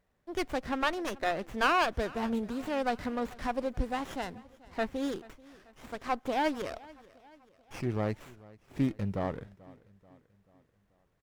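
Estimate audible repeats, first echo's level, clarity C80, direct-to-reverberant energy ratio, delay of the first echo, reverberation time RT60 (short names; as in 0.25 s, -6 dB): 3, -22.0 dB, none, none, 0.436 s, none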